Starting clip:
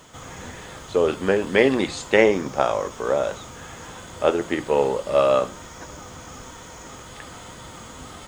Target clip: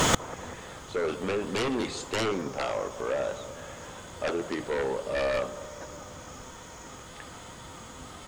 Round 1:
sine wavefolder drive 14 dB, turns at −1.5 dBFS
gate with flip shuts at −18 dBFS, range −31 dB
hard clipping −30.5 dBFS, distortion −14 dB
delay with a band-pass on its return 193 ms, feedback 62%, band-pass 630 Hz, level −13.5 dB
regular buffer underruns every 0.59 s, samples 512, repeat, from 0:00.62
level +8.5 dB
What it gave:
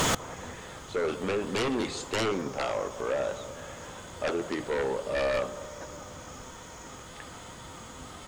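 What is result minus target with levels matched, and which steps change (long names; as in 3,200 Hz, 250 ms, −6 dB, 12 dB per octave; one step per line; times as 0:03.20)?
hard clipping: distortion +18 dB
change: hard clipping −20 dBFS, distortion −32 dB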